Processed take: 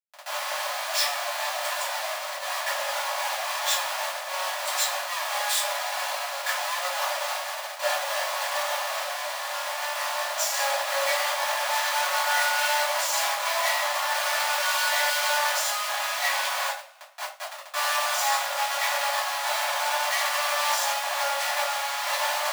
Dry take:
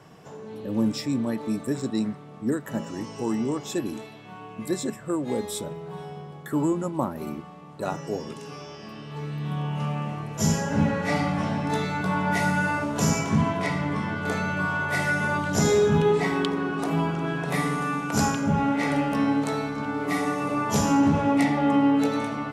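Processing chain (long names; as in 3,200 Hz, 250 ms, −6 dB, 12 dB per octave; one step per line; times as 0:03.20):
0:16.67–0:17.74: gate with flip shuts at −19 dBFS, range −24 dB
comparator with hysteresis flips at −40 dBFS
Chebyshev high-pass filter 550 Hz, order 10
coupled-rooms reverb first 0.3 s, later 1.8 s, from −27 dB, DRR −8.5 dB
level −5 dB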